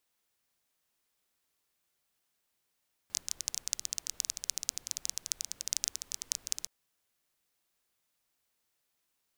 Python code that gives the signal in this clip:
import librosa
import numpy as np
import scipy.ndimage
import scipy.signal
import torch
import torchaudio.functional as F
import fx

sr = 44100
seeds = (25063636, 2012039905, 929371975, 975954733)

y = fx.rain(sr, seeds[0], length_s=3.57, drops_per_s=15.0, hz=6100.0, bed_db=-22.5)